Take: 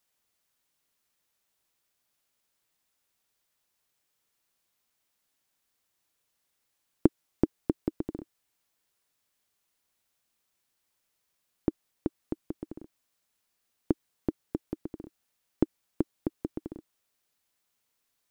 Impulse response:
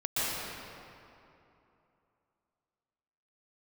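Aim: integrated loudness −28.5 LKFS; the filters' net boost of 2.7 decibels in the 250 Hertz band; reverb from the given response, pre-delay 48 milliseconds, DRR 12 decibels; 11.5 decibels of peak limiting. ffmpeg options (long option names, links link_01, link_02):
-filter_complex "[0:a]equalizer=frequency=250:width_type=o:gain=3.5,alimiter=limit=-15dB:level=0:latency=1,asplit=2[link_01][link_02];[1:a]atrim=start_sample=2205,adelay=48[link_03];[link_02][link_03]afir=irnorm=-1:irlink=0,volume=-22dB[link_04];[link_01][link_04]amix=inputs=2:normalize=0,volume=9.5dB"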